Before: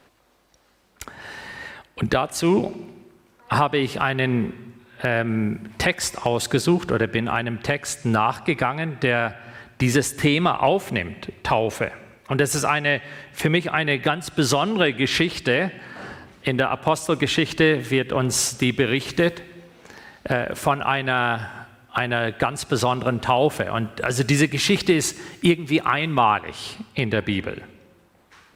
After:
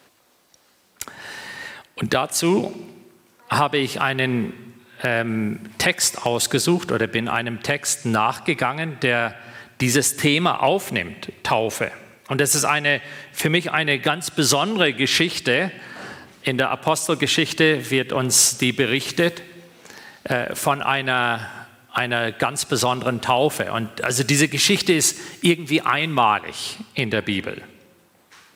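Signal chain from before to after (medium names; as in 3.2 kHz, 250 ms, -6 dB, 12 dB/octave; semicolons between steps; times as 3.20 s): high-pass 110 Hz; treble shelf 3.6 kHz +9 dB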